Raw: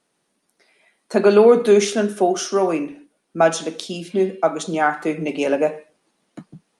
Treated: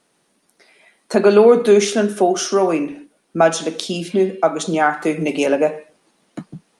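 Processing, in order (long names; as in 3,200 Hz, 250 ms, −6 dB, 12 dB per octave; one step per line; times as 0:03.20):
0:05.04–0:05.46: high-shelf EQ 8,600 Hz +12 dB
in parallel at +1.5 dB: downward compressor, threshold −27 dBFS, peak gain reduction 18 dB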